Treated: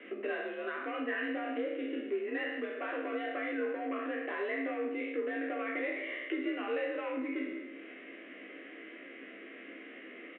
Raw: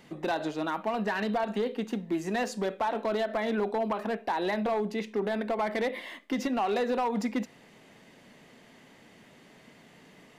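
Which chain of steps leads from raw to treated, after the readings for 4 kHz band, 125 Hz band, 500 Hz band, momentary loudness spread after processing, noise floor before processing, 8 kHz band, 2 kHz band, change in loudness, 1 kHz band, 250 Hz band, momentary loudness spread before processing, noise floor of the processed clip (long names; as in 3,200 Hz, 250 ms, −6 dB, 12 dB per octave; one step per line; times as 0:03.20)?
−7.5 dB, below −25 dB, −5.5 dB, 13 LU, −56 dBFS, below −30 dB, 0.0 dB, −5.5 dB, −10.5 dB, −5.5 dB, 4 LU, −50 dBFS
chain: peak hold with a decay on every bin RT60 0.87 s
phaser with its sweep stopped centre 2,000 Hz, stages 4
downward compressor 2.5 to 1, threshold −46 dBFS, peak gain reduction 13.5 dB
single-sideband voice off tune +57 Hz 220–2,900 Hz
double-tracking delay 15 ms −4.5 dB
level +6.5 dB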